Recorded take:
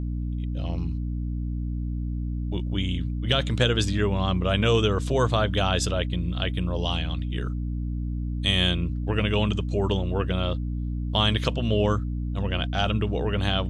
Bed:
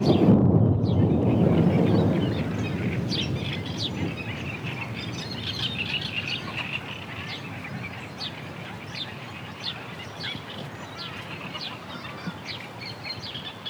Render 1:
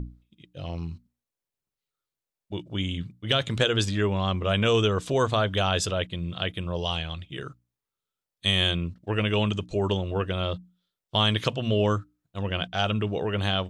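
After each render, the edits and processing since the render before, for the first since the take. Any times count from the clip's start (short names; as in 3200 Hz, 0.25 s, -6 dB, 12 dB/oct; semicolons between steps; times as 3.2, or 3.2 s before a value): notches 60/120/180/240/300 Hz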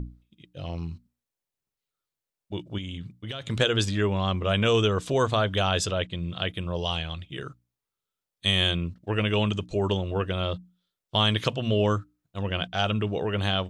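2.78–3.5 compressor 5:1, threshold -32 dBFS; 5.84–6.35 LPF 8900 Hz 24 dB/oct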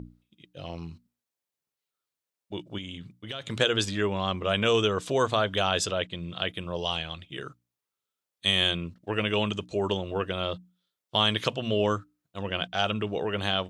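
HPF 220 Hz 6 dB/oct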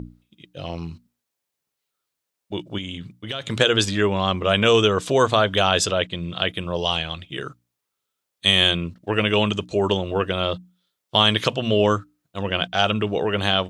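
gain +7 dB; limiter -2 dBFS, peak gain reduction 2 dB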